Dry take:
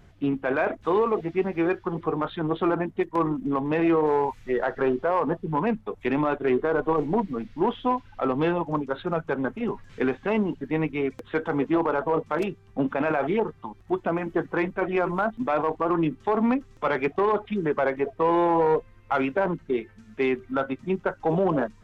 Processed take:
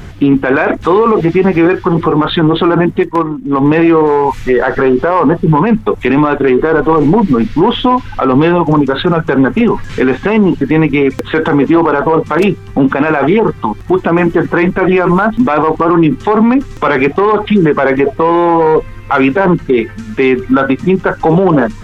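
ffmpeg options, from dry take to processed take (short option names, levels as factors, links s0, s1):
-filter_complex "[0:a]asplit=3[s0][s1][s2];[s0]atrim=end=3.23,asetpts=PTS-STARTPTS,afade=t=out:st=2.96:d=0.27:silence=0.158489[s3];[s1]atrim=start=3.23:end=3.48,asetpts=PTS-STARTPTS,volume=0.158[s4];[s2]atrim=start=3.48,asetpts=PTS-STARTPTS,afade=t=in:d=0.27:silence=0.158489[s5];[s3][s4][s5]concat=n=3:v=0:a=1,equalizer=f=630:t=o:w=0.5:g=-5.5,alimiter=level_in=18.8:limit=0.891:release=50:level=0:latency=1,volume=0.891"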